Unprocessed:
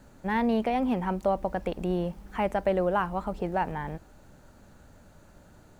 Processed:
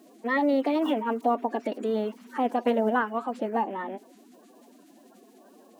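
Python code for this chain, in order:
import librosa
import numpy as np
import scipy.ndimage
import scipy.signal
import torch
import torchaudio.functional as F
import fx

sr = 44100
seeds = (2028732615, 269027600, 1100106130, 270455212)

y = fx.spec_quant(x, sr, step_db=30)
y = fx.brickwall_highpass(y, sr, low_hz=160.0)
y = fx.pitch_keep_formants(y, sr, semitones=3.5)
y = y * librosa.db_to_amplitude(2.5)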